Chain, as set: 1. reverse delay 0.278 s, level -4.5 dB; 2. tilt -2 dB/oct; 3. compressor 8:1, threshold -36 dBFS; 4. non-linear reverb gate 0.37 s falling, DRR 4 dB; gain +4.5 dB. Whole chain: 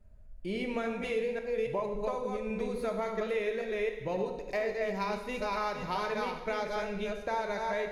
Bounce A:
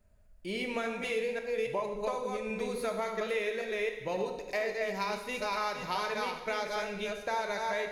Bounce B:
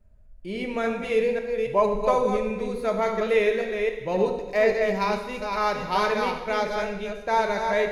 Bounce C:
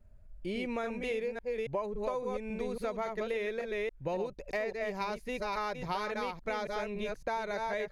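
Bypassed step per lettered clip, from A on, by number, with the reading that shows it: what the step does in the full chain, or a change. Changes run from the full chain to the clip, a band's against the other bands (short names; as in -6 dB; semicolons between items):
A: 2, 4 kHz band +5.5 dB; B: 3, mean gain reduction 6.5 dB; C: 4, loudness change -2.0 LU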